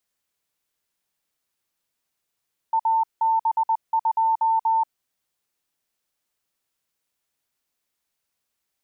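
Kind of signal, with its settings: Morse "AB2" 20 wpm 897 Hz -17 dBFS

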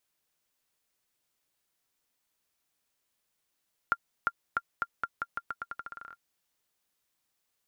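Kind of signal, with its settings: bouncing ball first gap 0.35 s, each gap 0.85, 1.39 kHz, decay 49 ms -13.5 dBFS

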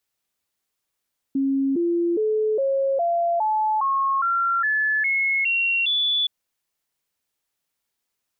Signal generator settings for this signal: stepped sine 272 Hz up, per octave 3, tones 12, 0.41 s, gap 0.00 s -18.5 dBFS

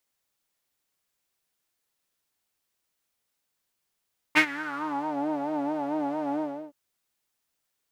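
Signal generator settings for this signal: synth patch with vibrato D4, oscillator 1 triangle, interval 0 st, oscillator 2 level -10 dB, sub -18.5 dB, noise -20 dB, filter bandpass, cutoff 570 Hz, Q 4.4, filter envelope 2 oct, filter decay 0.81 s, filter sustain 15%, attack 24 ms, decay 0.08 s, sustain -20 dB, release 0.36 s, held 2.01 s, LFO 4.5 Hz, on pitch 95 cents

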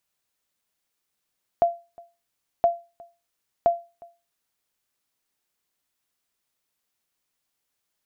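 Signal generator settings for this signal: sonar ping 686 Hz, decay 0.29 s, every 1.02 s, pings 3, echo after 0.36 s, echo -26 dB -11 dBFS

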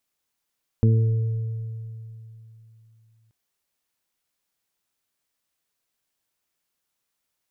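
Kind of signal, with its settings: additive tone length 2.48 s, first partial 112 Hz, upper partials -6/-17/-14 dB, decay 3.20 s, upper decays 0.63/0.94/1.98 s, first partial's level -13.5 dB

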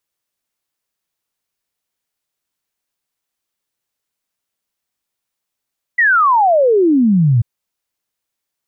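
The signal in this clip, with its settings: log sweep 2 kHz -> 110 Hz 1.44 s -8.5 dBFS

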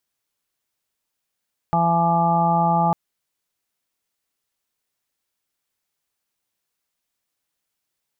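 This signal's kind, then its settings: steady additive tone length 1.20 s, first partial 169 Hz, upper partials -13/-14.5/-3/3/-17/-5 dB, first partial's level -21 dB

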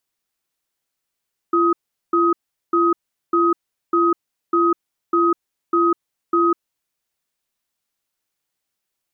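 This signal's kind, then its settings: cadence 341 Hz, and 1.26 kHz, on 0.20 s, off 0.40 s, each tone -16 dBFS 5.36 s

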